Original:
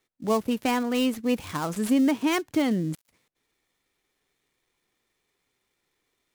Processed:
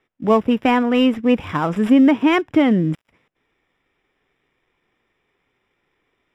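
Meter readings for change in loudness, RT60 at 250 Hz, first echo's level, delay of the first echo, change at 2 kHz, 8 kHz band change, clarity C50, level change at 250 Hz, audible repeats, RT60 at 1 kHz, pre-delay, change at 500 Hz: +9.0 dB, no reverb, no echo, no echo, +8.5 dB, no reading, no reverb, +9.0 dB, no echo, no reverb, no reverb, +9.0 dB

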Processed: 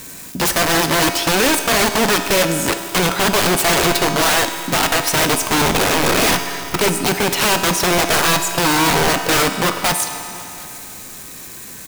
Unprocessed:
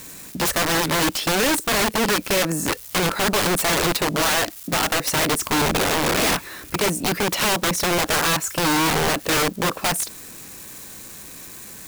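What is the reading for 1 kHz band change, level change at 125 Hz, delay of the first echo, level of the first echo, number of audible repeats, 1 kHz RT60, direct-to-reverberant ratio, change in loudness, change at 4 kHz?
+5.0 dB, +4.0 dB, 731 ms, -24.0 dB, 1, 2.8 s, 6.0 dB, +5.0 dB, +5.0 dB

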